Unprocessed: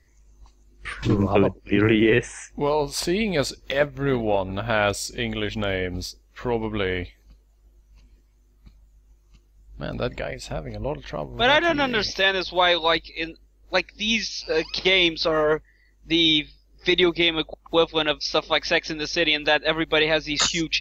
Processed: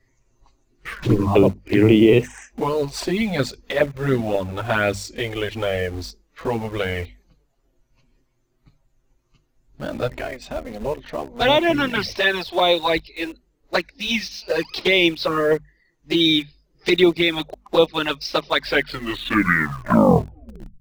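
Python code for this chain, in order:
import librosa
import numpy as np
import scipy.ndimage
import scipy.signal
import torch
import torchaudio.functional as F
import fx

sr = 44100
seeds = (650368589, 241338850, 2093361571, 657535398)

p1 = fx.tape_stop_end(x, sr, length_s=2.3)
p2 = fx.high_shelf(p1, sr, hz=3500.0, db=-8.0)
p3 = fx.hum_notches(p2, sr, base_hz=50, count=5)
p4 = fx.env_flanger(p3, sr, rest_ms=7.8, full_db=-15.5)
p5 = fx.quant_dither(p4, sr, seeds[0], bits=6, dither='none')
p6 = p4 + F.gain(torch.from_numpy(p5), -11.5).numpy()
y = F.gain(torch.from_numpy(p6), 4.0).numpy()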